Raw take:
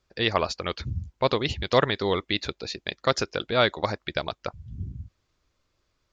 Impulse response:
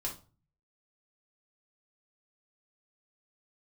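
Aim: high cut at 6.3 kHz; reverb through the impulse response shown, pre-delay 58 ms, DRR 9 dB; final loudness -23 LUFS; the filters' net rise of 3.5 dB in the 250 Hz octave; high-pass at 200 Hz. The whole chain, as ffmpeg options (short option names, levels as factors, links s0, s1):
-filter_complex "[0:a]highpass=200,lowpass=6300,equalizer=f=250:t=o:g=6.5,asplit=2[s0][s1];[1:a]atrim=start_sample=2205,adelay=58[s2];[s1][s2]afir=irnorm=-1:irlink=0,volume=0.316[s3];[s0][s3]amix=inputs=2:normalize=0,volume=1.33"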